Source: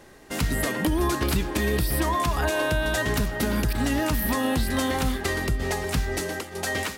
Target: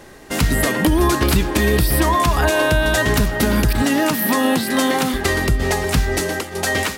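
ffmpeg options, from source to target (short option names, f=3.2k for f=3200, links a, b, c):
-filter_complex "[0:a]asettb=1/sr,asplit=3[a][b][c];[a]atrim=end=3.824[d];[b]atrim=start=3.82:end=5.14,asetpts=PTS-STARTPTS,afade=t=in:d=0.004:c=qsin,afade=t=out:st=1.316:d=0.004:c=qsin,highpass=f=160:w=0.5412,highpass=f=160:w=1.3066[e];[c]atrim=start=5.136[f];[d][e]acrossfade=d=0.004:c1=hsin:c2=qsin[g];[g][f]acrossfade=d=0.004:c1=qsin:c2=hsin,volume=8dB"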